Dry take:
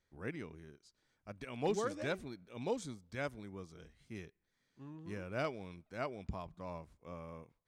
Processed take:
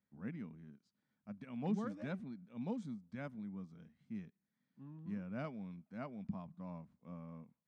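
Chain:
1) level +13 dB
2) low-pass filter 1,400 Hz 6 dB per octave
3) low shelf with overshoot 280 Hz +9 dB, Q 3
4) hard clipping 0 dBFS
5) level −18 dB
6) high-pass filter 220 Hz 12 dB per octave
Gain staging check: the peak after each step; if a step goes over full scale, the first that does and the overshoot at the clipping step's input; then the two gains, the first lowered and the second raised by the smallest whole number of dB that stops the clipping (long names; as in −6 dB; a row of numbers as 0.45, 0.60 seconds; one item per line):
−11.0, −11.0, −3.0, −3.0, −21.0, −26.5 dBFS
no step passes full scale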